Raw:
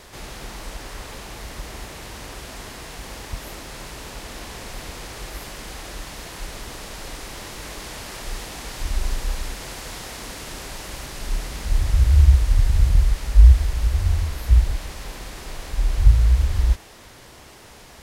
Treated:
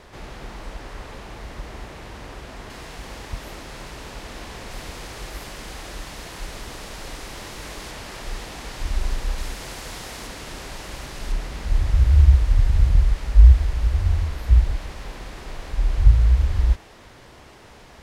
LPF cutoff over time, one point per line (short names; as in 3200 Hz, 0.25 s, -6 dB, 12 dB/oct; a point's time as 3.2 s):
LPF 6 dB/oct
2200 Hz
from 2.7 s 4600 Hz
from 4.71 s 7900 Hz
from 7.91 s 4800 Hz
from 9.38 s 9800 Hz
from 10.27 s 5400 Hz
from 11.32 s 3100 Hz